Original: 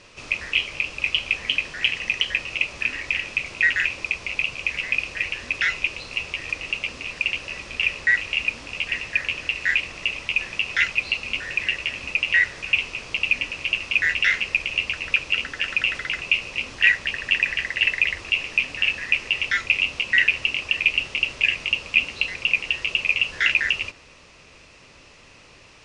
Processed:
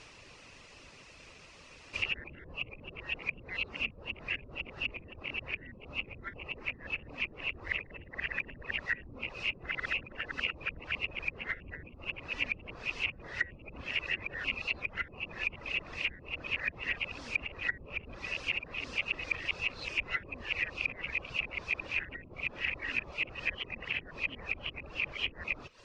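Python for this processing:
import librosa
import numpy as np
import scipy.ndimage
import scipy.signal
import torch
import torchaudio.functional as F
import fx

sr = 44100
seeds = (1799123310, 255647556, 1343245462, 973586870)

y = x[::-1].copy()
y = fx.dereverb_blind(y, sr, rt60_s=0.57)
y = fx.env_lowpass_down(y, sr, base_hz=320.0, full_db=-17.5)
y = y * 10.0 ** (-3.0 / 20.0)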